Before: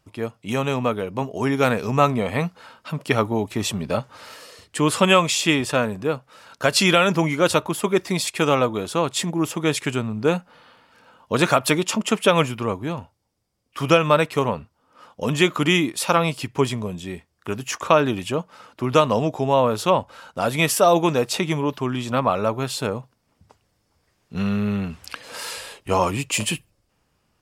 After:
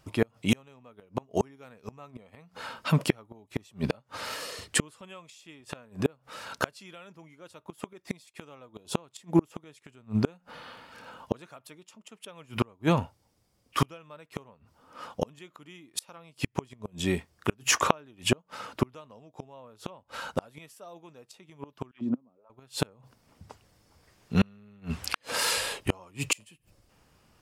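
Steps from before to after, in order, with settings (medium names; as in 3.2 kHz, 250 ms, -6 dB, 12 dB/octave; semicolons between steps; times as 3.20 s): inverted gate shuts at -15 dBFS, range -36 dB; 8.76–8.96 s: time-frequency box 1.1–2.4 kHz -8 dB; 21.91–22.50 s: auto-wah 250–2900 Hz, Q 3.6, down, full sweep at -34.5 dBFS; trim +5 dB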